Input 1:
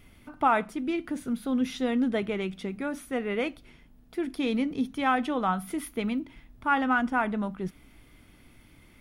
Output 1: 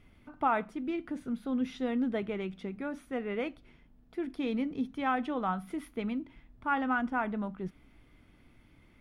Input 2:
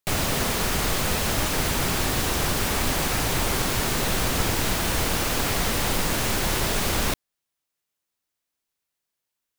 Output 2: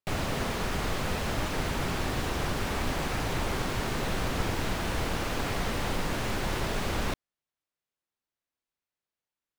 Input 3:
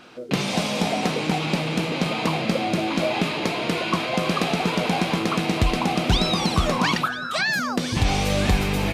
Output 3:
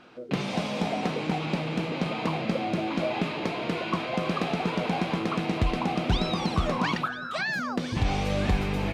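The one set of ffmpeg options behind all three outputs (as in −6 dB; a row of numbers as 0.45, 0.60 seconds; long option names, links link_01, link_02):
-af "lowpass=frequency=2600:poles=1,volume=-4.5dB"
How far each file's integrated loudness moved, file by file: −5.0, −7.5, −5.5 LU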